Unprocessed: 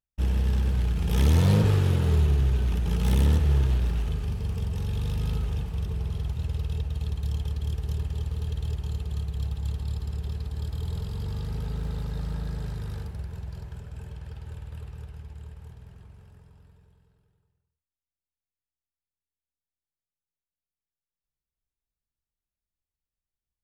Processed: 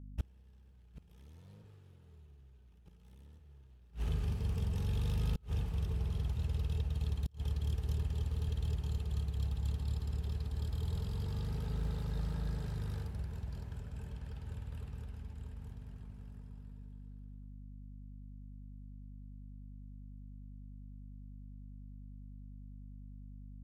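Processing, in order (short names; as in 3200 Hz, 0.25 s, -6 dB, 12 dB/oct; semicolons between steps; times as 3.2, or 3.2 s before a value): hum 50 Hz, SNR 16 dB; flipped gate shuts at -19 dBFS, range -31 dB; gain -5.5 dB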